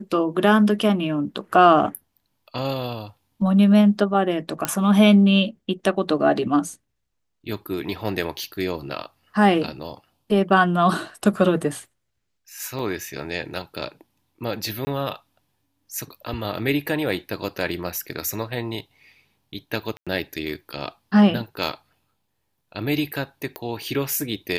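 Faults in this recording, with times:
4.65 pop -5 dBFS
12.79 gap 2.3 ms
14.85–14.87 gap 20 ms
19.97–20.07 gap 96 ms
23.56 pop -16 dBFS

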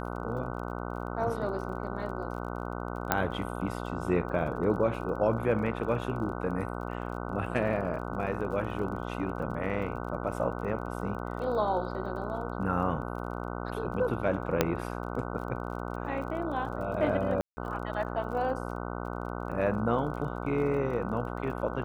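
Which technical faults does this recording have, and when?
buzz 60 Hz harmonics 25 -36 dBFS
crackle 31/s -41 dBFS
3.12 pop -9 dBFS
14.61 pop -8 dBFS
17.41–17.57 gap 0.16 s

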